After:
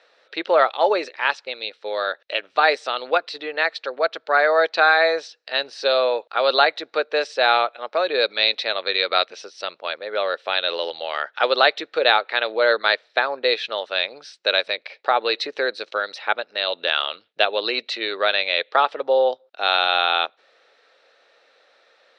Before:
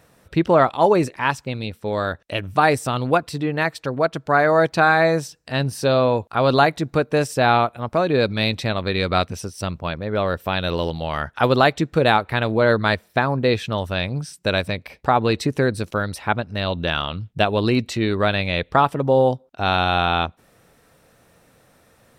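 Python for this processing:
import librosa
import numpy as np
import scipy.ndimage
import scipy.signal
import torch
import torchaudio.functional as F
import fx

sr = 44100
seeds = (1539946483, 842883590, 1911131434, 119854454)

y = fx.cabinet(x, sr, low_hz=500.0, low_slope=24, high_hz=4700.0, hz=(710.0, 1000.0, 4000.0), db=(-4, -8, 6))
y = y * 10.0 ** (2.5 / 20.0)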